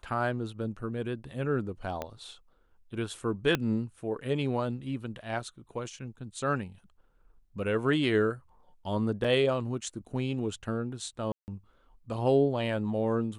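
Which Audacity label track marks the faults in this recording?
2.020000	2.020000	click −20 dBFS
3.550000	3.550000	click −13 dBFS
9.240000	9.250000	drop-out 5.3 ms
11.320000	11.480000	drop-out 159 ms

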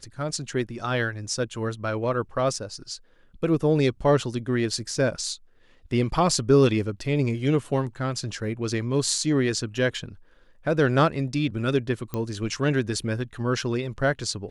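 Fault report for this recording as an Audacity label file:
12.140000	12.140000	click −16 dBFS

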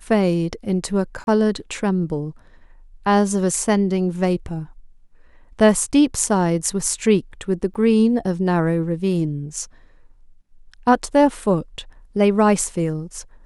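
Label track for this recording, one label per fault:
1.240000	1.270000	drop-out 31 ms
7.740000	7.750000	drop-out 9.8 ms

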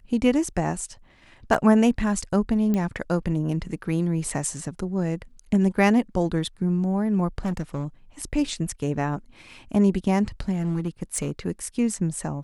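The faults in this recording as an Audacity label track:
1.540000	1.550000	drop-out 5.5 ms
2.740000	2.740000	click −14 dBFS
7.450000	7.850000	clipping −22 dBFS
10.520000	11.310000	clipping −20.5 dBFS

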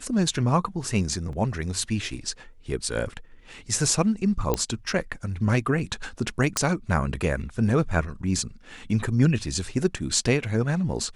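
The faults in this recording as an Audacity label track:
1.330000	1.330000	drop-out 2.1 ms
4.540000	4.540000	click −9 dBFS
6.570000	6.570000	click −7 dBFS

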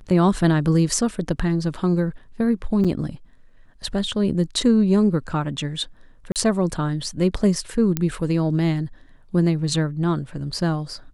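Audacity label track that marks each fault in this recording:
2.840000	2.850000	drop-out 6.4 ms
6.320000	6.360000	drop-out 38 ms
7.970000	7.970000	click −7 dBFS

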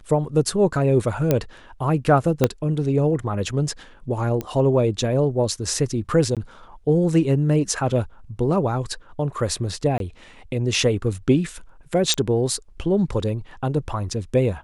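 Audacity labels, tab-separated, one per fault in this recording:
1.310000	1.310000	click −5 dBFS
2.440000	2.440000	click −3 dBFS
4.410000	4.410000	click −14 dBFS
6.350000	6.370000	drop-out 17 ms
9.980000	10.000000	drop-out 22 ms
12.140000	12.140000	click −9 dBFS

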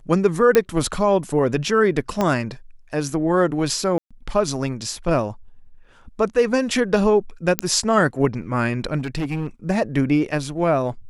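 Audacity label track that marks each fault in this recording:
0.550000	0.550000	click −3 dBFS
2.210000	2.210000	click −8 dBFS
3.980000	4.110000	drop-out 126 ms
7.590000	7.590000	click −1 dBFS
8.980000	9.470000	clipping −20.5 dBFS

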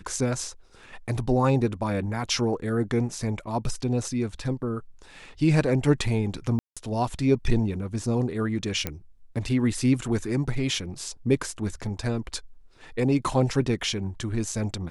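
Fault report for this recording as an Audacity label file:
6.590000	6.770000	drop-out 176 ms
8.870000	8.870000	click −12 dBFS

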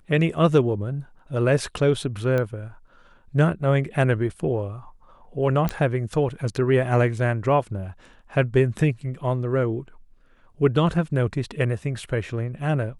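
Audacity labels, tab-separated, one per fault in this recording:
2.380000	2.380000	click −14 dBFS
5.690000	5.690000	click −11 dBFS

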